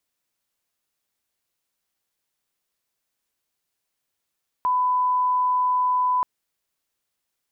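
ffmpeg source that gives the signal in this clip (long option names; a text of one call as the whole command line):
ffmpeg -f lavfi -i "sine=frequency=1000:duration=1.58:sample_rate=44100,volume=0.06dB" out.wav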